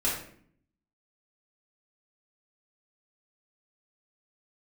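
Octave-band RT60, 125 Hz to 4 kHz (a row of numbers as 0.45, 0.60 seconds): 0.95, 0.90, 0.65, 0.50, 0.55, 0.40 seconds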